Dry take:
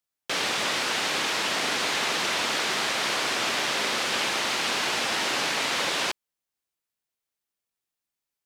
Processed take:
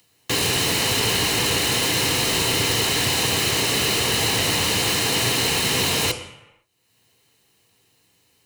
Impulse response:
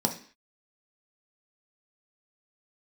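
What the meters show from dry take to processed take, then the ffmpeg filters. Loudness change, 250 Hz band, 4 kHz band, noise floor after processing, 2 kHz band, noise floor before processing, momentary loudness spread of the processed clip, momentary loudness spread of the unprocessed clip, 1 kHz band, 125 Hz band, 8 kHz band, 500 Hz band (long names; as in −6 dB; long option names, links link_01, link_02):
+6.0 dB, +9.5 dB, +6.0 dB, −63 dBFS, +2.0 dB, below −85 dBFS, 1 LU, 1 LU, +1.0 dB, +19.5 dB, +9.0 dB, +6.0 dB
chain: -filter_complex "[0:a]aeval=exprs='(mod(14.1*val(0)+1,2)-1)/14.1':channel_layout=same,acompressor=mode=upward:threshold=-51dB:ratio=2.5,asplit=2[link_01][link_02];[1:a]atrim=start_sample=2205,asetrate=22932,aresample=44100[link_03];[link_02][link_03]afir=irnorm=-1:irlink=0,volume=-6.5dB[link_04];[link_01][link_04]amix=inputs=2:normalize=0"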